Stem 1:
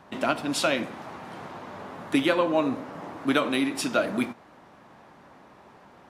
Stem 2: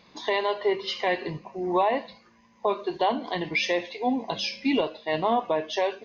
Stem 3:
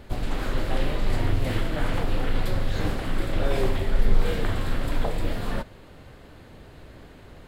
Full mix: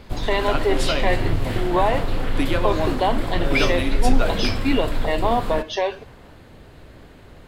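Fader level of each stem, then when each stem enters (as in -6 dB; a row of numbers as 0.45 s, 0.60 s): -1.5 dB, +3.0 dB, +1.5 dB; 0.25 s, 0.00 s, 0.00 s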